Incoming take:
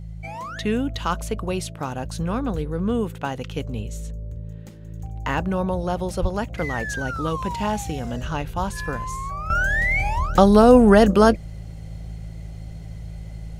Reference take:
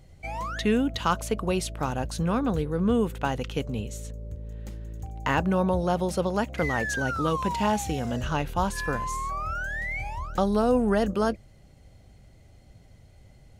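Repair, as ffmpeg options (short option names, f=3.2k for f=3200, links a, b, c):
-filter_complex "[0:a]bandreject=f=54.2:t=h:w=4,bandreject=f=108.4:t=h:w=4,bandreject=f=162.6:t=h:w=4,asplit=3[a][b][c];[a]afade=t=out:st=6.21:d=0.02[d];[b]highpass=f=140:w=0.5412,highpass=f=140:w=1.3066,afade=t=in:st=6.21:d=0.02,afade=t=out:st=6.33:d=0.02[e];[c]afade=t=in:st=6.33:d=0.02[f];[d][e][f]amix=inputs=3:normalize=0,asetnsamples=n=441:p=0,asendcmd='9.5 volume volume -10.5dB',volume=0dB"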